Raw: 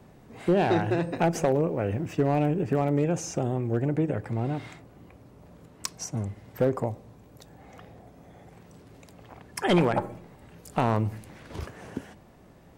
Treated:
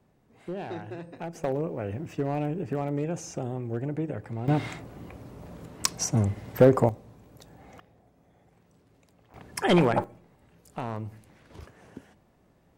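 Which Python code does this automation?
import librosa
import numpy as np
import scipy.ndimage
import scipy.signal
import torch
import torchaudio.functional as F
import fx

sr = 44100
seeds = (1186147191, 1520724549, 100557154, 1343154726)

y = fx.gain(x, sr, db=fx.steps((0.0, -13.0), (1.44, -5.0), (4.48, 7.0), (6.89, -1.0), (7.8, -11.5), (9.34, 1.0), (10.04, -9.5)))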